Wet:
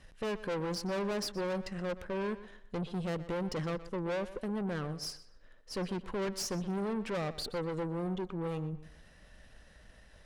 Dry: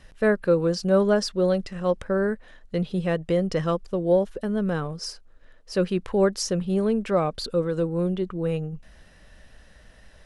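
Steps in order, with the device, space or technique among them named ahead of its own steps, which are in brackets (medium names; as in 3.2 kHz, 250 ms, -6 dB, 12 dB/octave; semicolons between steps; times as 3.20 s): rockabilly slapback (valve stage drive 29 dB, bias 0.55; tape echo 123 ms, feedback 31%, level -13.5 dB, low-pass 4.4 kHz); trim -3 dB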